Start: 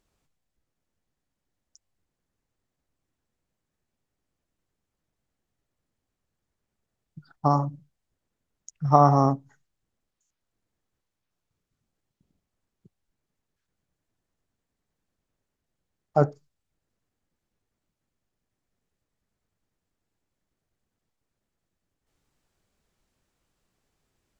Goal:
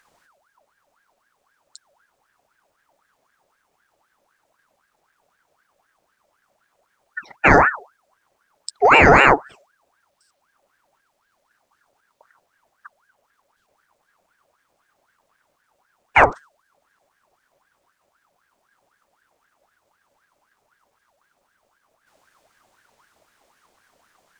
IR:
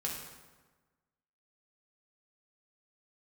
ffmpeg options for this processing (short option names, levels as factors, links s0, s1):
-af "apsyclip=8.41,aeval=exprs='val(0)*sin(2*PI*1100*n/s+1100*0.5/3.9*sin(2*PI*3.9*n/s))':c=same,volume=0.794"